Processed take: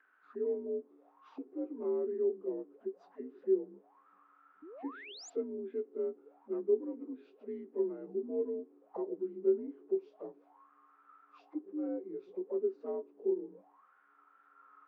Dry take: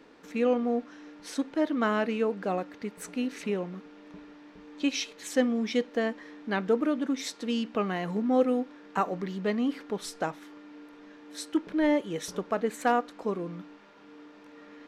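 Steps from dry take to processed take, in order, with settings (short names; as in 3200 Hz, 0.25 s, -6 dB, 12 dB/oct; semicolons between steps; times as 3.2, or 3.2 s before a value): inharmonic rescaling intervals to 85%; auto-wah 380–1700 Hz, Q 13, down, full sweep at -33 dBFS; painted sound rise, 4.62–5.3, 280–7600 Hz -55 dBFS; gain +5.5 dB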